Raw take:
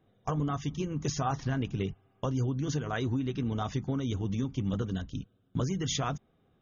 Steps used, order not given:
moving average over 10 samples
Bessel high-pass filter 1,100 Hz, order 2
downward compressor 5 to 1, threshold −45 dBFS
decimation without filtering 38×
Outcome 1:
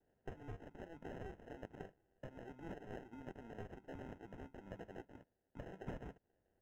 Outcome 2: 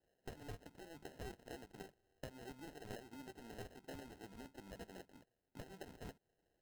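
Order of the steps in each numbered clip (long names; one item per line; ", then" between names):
Bessel high-pass filter, then downward compressor, then decimation without filtering, then moving average
Bessel high-pass filter, then downward compressor, then moving average, then decimation without filtering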